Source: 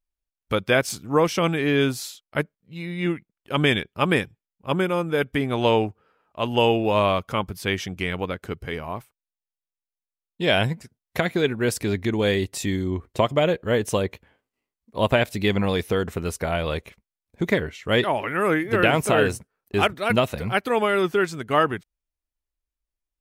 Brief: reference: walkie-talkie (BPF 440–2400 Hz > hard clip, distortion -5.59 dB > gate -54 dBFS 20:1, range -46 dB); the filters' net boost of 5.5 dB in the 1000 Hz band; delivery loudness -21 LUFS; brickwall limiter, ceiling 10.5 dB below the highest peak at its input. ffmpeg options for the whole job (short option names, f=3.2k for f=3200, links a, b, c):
-af "equalizer=f=1k:t=o:g=7.5,alimiter=limit=-12dB:level=0:latency=1,highpass=440,lowpass=2.4k,asoftclip=type=hard:threshold=-27dB,agate=range=-46dB:threshold=-54dB:ratio=20,volume=11.5dB"